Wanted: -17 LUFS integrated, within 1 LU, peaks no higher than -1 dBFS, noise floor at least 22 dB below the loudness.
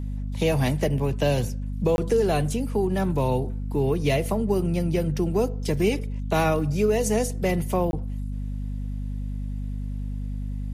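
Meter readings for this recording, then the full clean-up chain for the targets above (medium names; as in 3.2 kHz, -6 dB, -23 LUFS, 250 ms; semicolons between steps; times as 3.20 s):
dropouts 2; longest dropout 21 ms; hum 50 Hz; highest harmonic 250 Hz; hum level -27 dBFS; loudness -25.5 LUFS; peak level -10.5 dBFS; loudness target -17.0 LUFS
-> interpolate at 1.96/7.91 s, 21 ms; de-hum 50 Hz, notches 5; trim +8.5 dB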